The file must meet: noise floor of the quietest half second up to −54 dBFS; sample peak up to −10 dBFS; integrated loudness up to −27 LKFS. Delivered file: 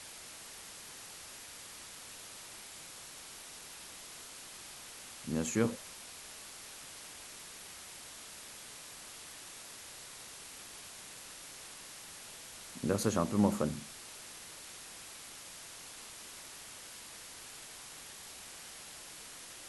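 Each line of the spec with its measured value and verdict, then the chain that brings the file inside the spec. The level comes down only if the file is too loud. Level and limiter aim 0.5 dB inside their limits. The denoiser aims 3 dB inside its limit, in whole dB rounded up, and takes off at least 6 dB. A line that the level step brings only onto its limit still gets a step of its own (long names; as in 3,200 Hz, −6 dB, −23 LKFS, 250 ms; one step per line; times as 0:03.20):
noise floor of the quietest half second −50 dBFS: out of spec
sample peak −13.5 dBFS: in spec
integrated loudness −41.5 LKFS: in spec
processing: broadband denoise 7 dB, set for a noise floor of −50 dBFS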